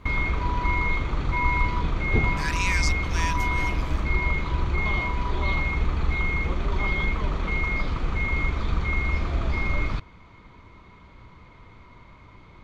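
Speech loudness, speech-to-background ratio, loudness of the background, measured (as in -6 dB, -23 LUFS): -30.5 LUFS, -4.5 dB, -26.0 LUFS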